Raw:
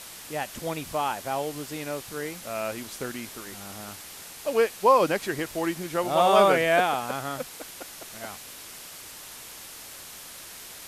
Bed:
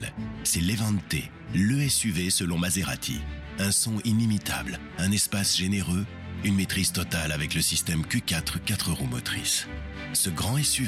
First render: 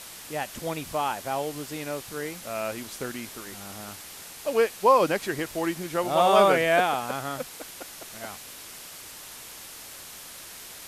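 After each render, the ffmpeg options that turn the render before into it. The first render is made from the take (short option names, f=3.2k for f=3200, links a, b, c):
-af anull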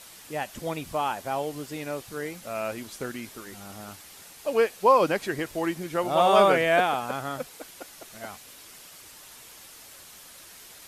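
-af "afftdn=nr=6:nf=-43"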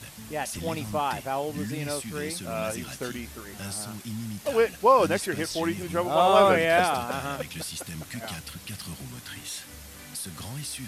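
-filter_complex "[1:a]volume=-11dB[a];[0:a][a]amix=inputs=2:normalize=0"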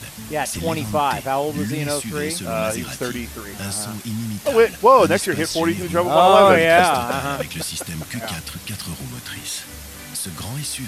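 -af "volume=8dB,alimiter=limit=-2dB:level=0:latency=1"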